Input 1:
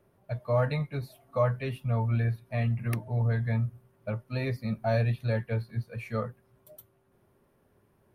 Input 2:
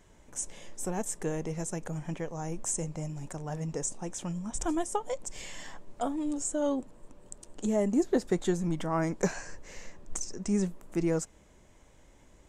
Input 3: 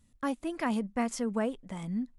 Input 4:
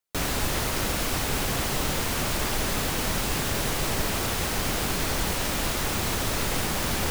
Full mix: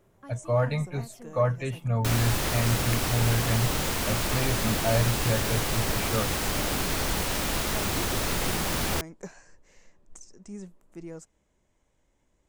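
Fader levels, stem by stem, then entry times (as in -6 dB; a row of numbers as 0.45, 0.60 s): +1.5, -12.5, -15.5, -1.0 dB; 0.00, 0.00, 0.00, 1.90 s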